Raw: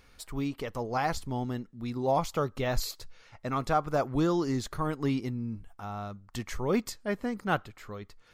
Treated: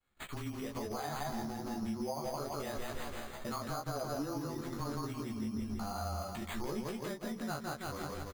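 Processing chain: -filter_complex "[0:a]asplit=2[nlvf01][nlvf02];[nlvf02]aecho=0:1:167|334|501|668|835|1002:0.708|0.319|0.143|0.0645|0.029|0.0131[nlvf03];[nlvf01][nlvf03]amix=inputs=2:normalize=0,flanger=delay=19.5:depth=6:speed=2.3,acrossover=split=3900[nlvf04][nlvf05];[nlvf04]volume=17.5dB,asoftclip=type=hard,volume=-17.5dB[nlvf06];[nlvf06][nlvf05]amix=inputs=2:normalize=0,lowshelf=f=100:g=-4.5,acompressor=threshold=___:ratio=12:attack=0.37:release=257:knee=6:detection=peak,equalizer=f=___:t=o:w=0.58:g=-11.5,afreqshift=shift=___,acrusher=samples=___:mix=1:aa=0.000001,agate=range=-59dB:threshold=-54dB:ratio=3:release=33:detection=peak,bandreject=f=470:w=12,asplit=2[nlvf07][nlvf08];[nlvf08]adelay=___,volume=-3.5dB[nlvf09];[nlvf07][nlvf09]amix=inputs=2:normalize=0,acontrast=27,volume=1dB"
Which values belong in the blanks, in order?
-39dB, 3.7k, -18, 8, 14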